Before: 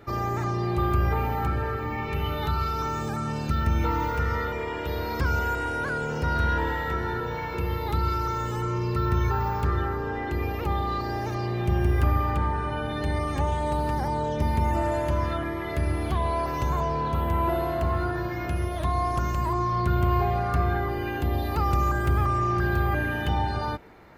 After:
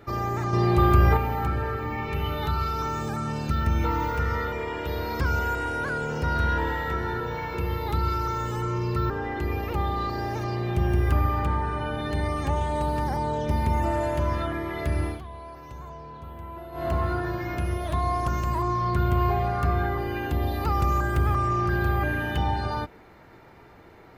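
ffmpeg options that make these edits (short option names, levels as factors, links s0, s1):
-filter_complex "[0:a]asplit=6[s0][s1][s2][s3][s4][s5];[s0]atrim=end=0.532[s6];[s1]atrim=start=0.528:end=1.172,asetpts=PTS-STARTPTS,volume=1.88[s7];[s2]atrim=start=1.168:end=9.102[s8];[s3]atrim=start=10.008:end=16.12,asetpts=PTS-STARTPTS,afade=t=out:st=5.962:d=0.15:silence=0.188365[s9];[s4]atrim=start=16.12:end=17.63,asetpts=PTS-STARTPTS,volume=0.188[s10];[s5]atrim=start=17.63,asetpts=PTS-STARTPTS,afade=t=in:d=0.15:silence=0.188365[s11];[s6][s7]acrossfade=d=0.004:c1=hsin:c2=hsin[s12];[s12][s8]acrossfade=d=0.004:c1=hsin:c2=hsin[s13];[s9][s10][s11]concat=n=3:v=0:a=1[s14];[s13][s14]acrossfade=d=0.004:c1=hsin:c2=hsin"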